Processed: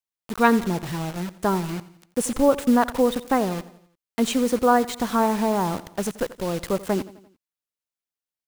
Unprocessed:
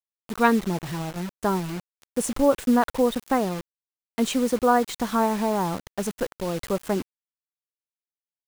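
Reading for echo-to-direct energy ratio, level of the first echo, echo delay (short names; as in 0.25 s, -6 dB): -16.5 dB, -18.0 dB, 86 ms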